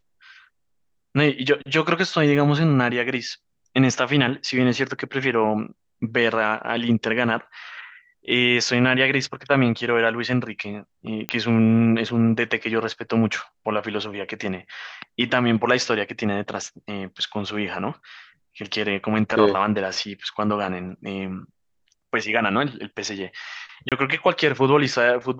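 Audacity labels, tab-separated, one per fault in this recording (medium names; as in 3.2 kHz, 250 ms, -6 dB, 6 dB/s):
2.350000	2.350000	dropout 2.2 ms
11.290000	11.290000	pop -8 dBFS
23.890000	23.920000	dropout 27 ms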